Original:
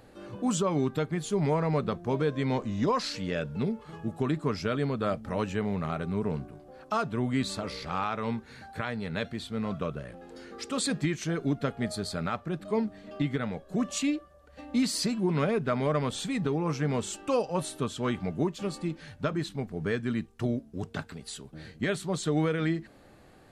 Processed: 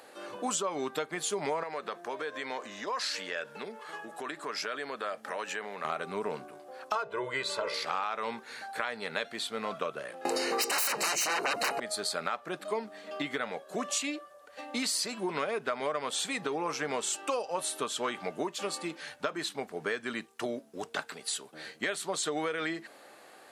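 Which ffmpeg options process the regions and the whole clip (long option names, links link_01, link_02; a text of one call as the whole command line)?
ffmpeg -i in.wav -filter_complex "[0:a]asettb=1/sr,asplit=3[link_01][link_02][link_03];[link_01]atrim=end=1.634[link_04];[link_02]atrim=start=1.63:end=5.85,asetpts=PTS-STARTPTS,afade=type=in:duration=0.004:curve=qsin,afade=type=out:start_time=4.216:duration=0.004:curve=qsin,highpass=frequency=310:poles=1,equalizer=frequency=1700:width=4.1:gain=6,acompressor=threshold=-36dB:ratio=3:attack=3.2:release=140:knee=1:detection=peak[link_05];[link_03]atrim=start=5.846[link_06];[link_04][link_05]acrossfade=duration=0.004:curve1=hsin:curve2=qsin[link_07];[link_07][link_06]acrossfade=duration=0.004:curve1=qsin:curve2=hsin,asettb=1/sr,asplit=3[link_08][link_09][link_10];[link_08]atrim=end=6.954[link_11];[link_09]atrim=start=6.95:end=7.74,asetpts=PTS-STARTPTS,afade=type=in:duration=0.004:curve=qsin,afade=type=out:start_time=0.786:duration=0.004:curve=qsin,lowpass=frequency=2100:poles=1,aecho=1:1:2:0.89,atrim=end_sample=34839,bandreject=frequency=58.9:width_type=h:width=4,bandreject=frequency=117.8:width_type=h:width=4,bandreject=frequency=176.7:width_type=h:width=4,bandreject=frequency=235.6:width_type=h:width=4,bandreject=frequency=294.5:width_type=h:width=4,bandreject=frequency=353.4:width_type=h:width=4,bandreject=frequency=412.3:width_type=h:width=4,bandreject=frequency=471.2:width_type=h:width=4,bandreject=frequency=530.1:width_type=h:width=4,bandreject=frequency=589:width_type=h:width=4,bandreject=frequency=647.9:width_type=h:width=4,bandreject=frequency=706.8:width_type=h:width=4[link_12];[link_10]atrim=start=7.736[link_13];[link_11][link_12]acrossfade=duration=0.004:curve1=hsin:curve2=qsin[link_14];[link_14][link_13]acrossfade=duration=0.004:curve1=qsin:curve2=hsin,asettb=1/sr,asplit=3[link_15][link_16][link_17];[link_15]atrim=end=10.254[link_18];[link_16]atrim=start=10.25:end=11.8,asetpts=PTS-STARTPTS,afade=type=in:duration=0.004:curve=qsin,afade=type=out:start_time=1.546:duration=0.004:curve=qsin,equalizer=frequency=1500:width_type=o:width=0.44:gain=-10.5,aeval=exprs='0.133*sin(PI/2*10*val(0)/0.133)':channel_layout=same,asuperstop=centerf=3400:order=12:qfactor=5.8[link_19];[link_17]atrim=start=11.796[link_20];[link_18][link_19]acrossfade=duration=0.004:curve1=hsin:curve2=qsin[link_21];[link_21][link_20]acrossfade=duration=0.004:curve1=qsin:curve2=hsin,highpass=560,equalizer=frequency=10000:width=1.1:gain=3.5,acompressor=threshold=-35dB:ratio=6,volume=6.5dB" out.wav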